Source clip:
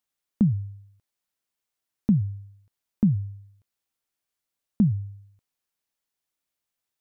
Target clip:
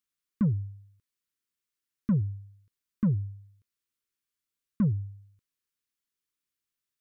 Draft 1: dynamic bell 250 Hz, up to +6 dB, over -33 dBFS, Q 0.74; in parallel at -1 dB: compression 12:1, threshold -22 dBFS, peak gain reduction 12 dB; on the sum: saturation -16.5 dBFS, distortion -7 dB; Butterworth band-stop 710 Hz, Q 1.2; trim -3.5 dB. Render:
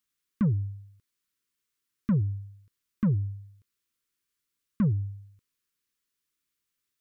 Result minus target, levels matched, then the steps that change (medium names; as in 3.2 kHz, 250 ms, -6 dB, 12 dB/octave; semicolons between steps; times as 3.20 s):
compression: peak gain reduction +12 dB
remove: compression 12:1, threshold -22 dBFS, peak gain reduction 12 dB